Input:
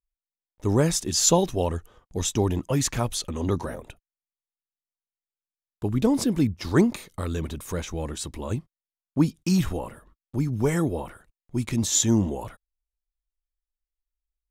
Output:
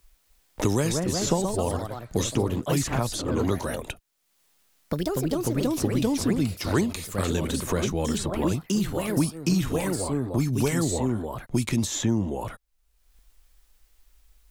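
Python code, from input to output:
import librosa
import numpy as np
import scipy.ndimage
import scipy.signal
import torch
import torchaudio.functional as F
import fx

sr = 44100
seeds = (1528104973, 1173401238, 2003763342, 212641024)

y = fx.echo_pitch(x, sr, ms=266, semitones=2, count=3, db_per_echo=-6.0)
y = fx.band_squash(y, sr, depth_pct=100)
y = y * 10.0 ** (-1.5 / 20.0)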